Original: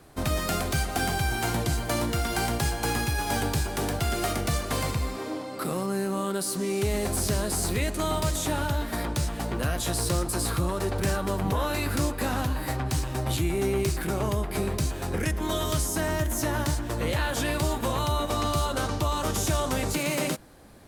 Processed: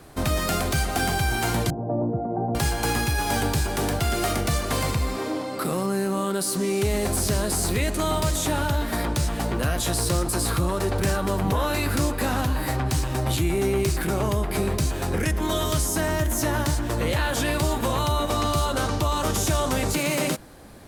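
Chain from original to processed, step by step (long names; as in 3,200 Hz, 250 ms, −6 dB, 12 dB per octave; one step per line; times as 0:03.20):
0:01.70–0:02.55: elliptic band-pass filter 110–740 Hz, stop band 60 dB
in parallel at −1 dB: brickwall limiter −24.5 dBFS, peak gain reduction 10 dB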